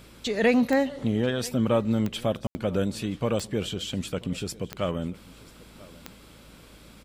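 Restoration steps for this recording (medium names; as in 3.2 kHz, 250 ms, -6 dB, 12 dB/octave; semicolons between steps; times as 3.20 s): de-click; de-hum 55.2 Hz, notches 6; room tone fill 2.47–2.55 s; inverse comb 989 ms -22 dB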